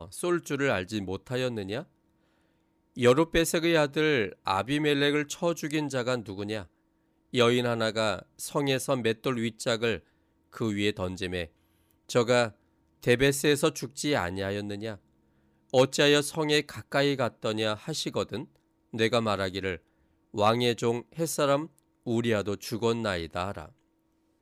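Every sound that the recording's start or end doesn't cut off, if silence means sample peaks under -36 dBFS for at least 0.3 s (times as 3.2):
2.97–6.63
7.33–9.97
10.57–11.45
12.09–12.49
13.03–14.94
15.73–18.44
18.94–19.76
20.34–21.66
22.07–23.65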